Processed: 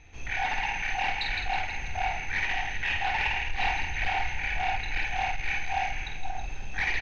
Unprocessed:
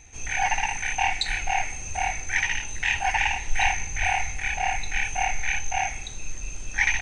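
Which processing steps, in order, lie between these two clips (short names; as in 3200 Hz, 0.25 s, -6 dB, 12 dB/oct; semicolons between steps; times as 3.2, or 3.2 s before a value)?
on a send: split-band echo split 1300 Hz, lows 0.532 s, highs 0.162 s, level -7 dB; on the sum: soft clip -21.5 dBFS, distortion -11 dB; LPF 4200 Hz 24 dB/oct; doubler 49 ms -6.5 dB; gain -1.5 dB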